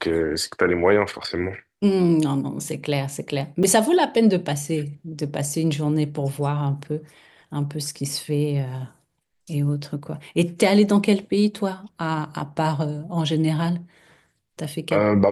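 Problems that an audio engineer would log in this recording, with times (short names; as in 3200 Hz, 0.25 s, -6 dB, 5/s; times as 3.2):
3.63–3.64 gap 5.9 ms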